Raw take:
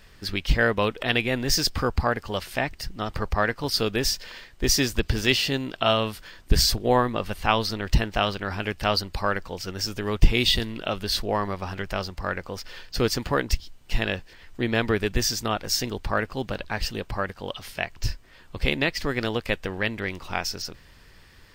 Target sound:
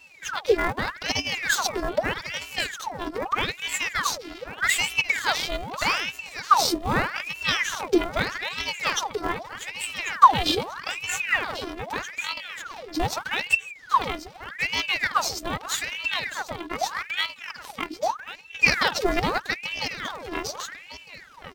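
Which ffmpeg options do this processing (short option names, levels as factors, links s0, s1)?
-filter_complex "[0:a]asettb=1/sr,asplit=3[s0][s1][s2];[s0]atrim=end=8.344[s3];[s1]atrim=start=8.34:end=9.03,asetpts=PTS-STARTPTS,afade=t=in:d=0.004:c=qsin,afade=t=out:st=0.686:d=0.004:c=qsin,aecho=1:1:7.1:0.62,atrim=end_sample=30429[s4];[s2]atrim=start=9.026[s5];[s3][s4]acrossfade=d=0.004:c1=hsin:c2=qsin[s6];[s6][s5]acrossfade=d=0.004:c1=qsin:c2=hsin,asettb=1/sr,asplit=3[s7][s8][s9];[s7]atrim=end=16.854[s10];[s8]atrim=start=16.85:end=17.29,asetpts=PTS-STARTPTS,afade=t=in:d=0.004:c=qsin,afade=t=out:st=0.436:d=0.004:c=qsin,equalizer=f=570:w=1.6:g=11[s11];[s9]atrim=start=17.286[s12];[s10][s11]acrossfade=d=0.004:c1=hsin:c2=qsin[s13];[s13][s12]acrossfade=d=0.004:c1=qsin:c2=hsin,asplit=2[s14][s15];[s15]aecho=0:1:1092:0.251[s16];[s14][s16]amix=inputs=2:normalize=0,asettb=1/sr,asplit=3[s17][s18][s19];[s17]atrim=end=18.634[s20];[s18]atrim=start=18.63:end=19.38,asetpts=PTS-STARTPTS,afade=t=in:d=0.004:c=qsin,afade=t=out:st=0.746:d=0.004:c=qsin,acontrast=31[s21];[s19]atrim=start=19.376[s22];[s20][s21]acrossfade=d=0.004:c1=hsin:c2=qsin[s23];[s23][s22]acrossfade=d=0.004:c1=qsin:c2=hsin,bandreject=f=209.3:t=h:w=4,bandreject=f=418.6:t=h:w=4,afftfilt=real='hypot(re,im)*cos(PI*b)':imag='0':win_size=512:overlap=0.75,asplit=2[s24][s25];[s25]acrusher=samples=36:mix=1:aa=0.000001,volume=0.266[s26];[s24][s26]amix=inputs=2:normalize=0,aeval=exprs='val(0)*sin(2*PI*1500*n/s+1500*0.8/0.81*sin(2*PI*0.81*n/s))':c=same,volume=1.33"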